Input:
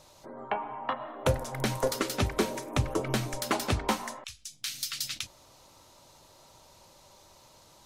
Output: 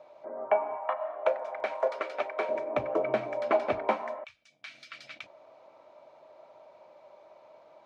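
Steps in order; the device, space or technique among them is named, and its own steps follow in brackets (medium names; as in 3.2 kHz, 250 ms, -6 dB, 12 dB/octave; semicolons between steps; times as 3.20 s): tilt EQ -2 dB/octave; 0.77–2.49 s: high-pass 630 Hz 12 dB/octave; tin-can telephone (band-pass 440–2100 Hz; small resonant body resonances 630/2300 Hz, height 13 dB, ringing for 35 ms)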